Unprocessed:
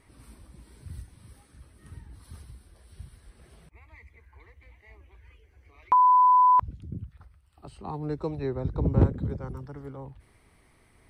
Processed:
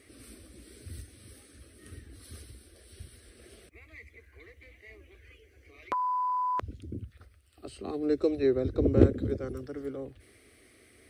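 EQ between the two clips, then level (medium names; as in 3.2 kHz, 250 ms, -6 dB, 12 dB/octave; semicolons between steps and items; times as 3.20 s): high-pass 100 Hz 12 dB/octave; static phaser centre 380 Hz, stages 4; +7.0 dB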